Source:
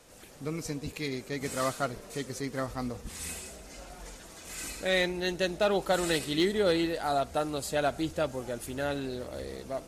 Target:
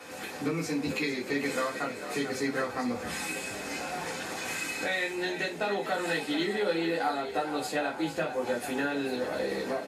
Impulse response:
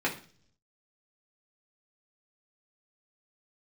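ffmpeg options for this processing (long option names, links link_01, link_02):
-filter_complex "[0:a]lowshelf=frequency=400:gain=-10.5,acompressor=threshold=-45dB:ratio=6,asplit=6[link_01][link_02][link_03][link_04][link_05][link_06];[link_02]adelay=444,afreqshift=67,volume=-11dB[link_07];[link_03]adelay=888,afreqshift=134,volume=-17dB[link_08];[link_04]adelay=1332,afreqshift=201,volume=-23dB[link_09];[link_05]adelay=1776,afreqshift=268,volume=-29.1dB[link_10];[link_06]adelay=2220,afreqshift=335,volume=-35.1dB[link_11];[link_01][link_07][link_08][link_09][link_10][link_11]amix=inputs=6:normalize=0[link_12];[1:a]atrim=start_sample=2205,atrim=end_sample=3528[link_13];[link_12][link_13]afir=irnorm=-1:irlink=0,volume=7.5dB"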